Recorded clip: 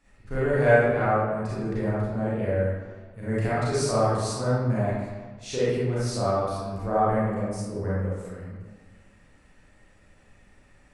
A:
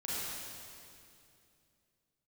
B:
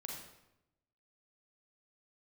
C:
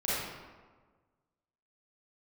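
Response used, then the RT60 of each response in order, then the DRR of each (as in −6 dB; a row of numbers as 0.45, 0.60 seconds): C; 2.6, 0.90, 1.4 seconds; −9.0, −1.0, −10.0 decibels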